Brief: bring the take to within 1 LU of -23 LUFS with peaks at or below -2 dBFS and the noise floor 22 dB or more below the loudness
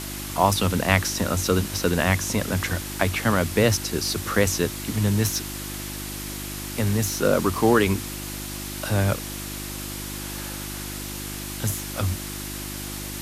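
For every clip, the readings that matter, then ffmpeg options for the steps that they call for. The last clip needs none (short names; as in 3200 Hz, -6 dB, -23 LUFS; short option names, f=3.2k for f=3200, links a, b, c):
hum 50 Hz; harmonics up to 350 Hz; hum level -33 dBFS; noise floor -33 dBFS; noise floor target -47 dBFS; loudness -24.5 LUFS; peak -1.5 dBFS; loudness target -23.0 LUFS
-> -af "bandreject=f=50:t=h:w=4,bandreject=f=100:t=h:w=4,bandreject=f=150:t=h:w=4,bandreject=f=200:t=h:w=4,bandreject=f=250:t=h:w=4,bandreject=f=300:t=h:w=4,bandreject=f=350:t=h:w=4"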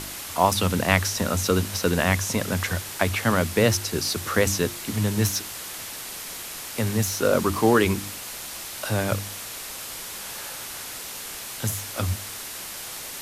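hum none; noise floor -36 dBFS; noise floor target -47 dBFS
-> -af "afftdn=nr=11:nf=-36"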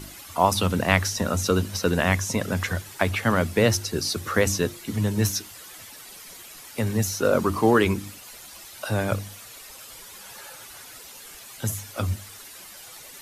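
noise floor -44 dBFS; noise floor target -46 dBFS
-> -af "afftdn=nr=6:nf=-44"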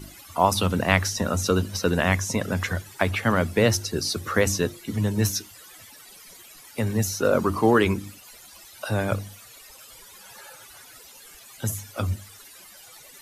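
noise floor -48 dBFS; loudness -24.5 LUFS; peak -1.5 dBFS; loudness target -23.0 LUFS
-> -af "volume=1.5dB,alimiter=limit=-2dB:level=0:latency=1"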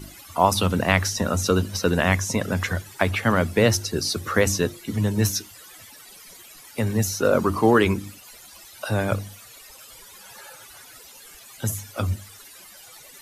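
loudness -23.0 LUFS; peak -2.0 dBFS; noise floor -46 dBFS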